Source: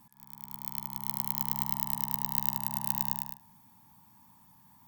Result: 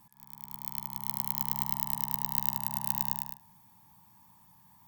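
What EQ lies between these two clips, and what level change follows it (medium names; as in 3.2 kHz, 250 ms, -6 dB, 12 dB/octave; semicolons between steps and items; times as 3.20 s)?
peaking EQ 250 Hz -8 dB 0.37 oct; band-stop 1.4 kHz, Q 16; 0.0 dB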